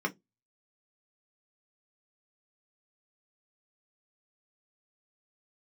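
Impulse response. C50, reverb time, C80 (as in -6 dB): 22.5 dB, 0.15 s, 36.0 dB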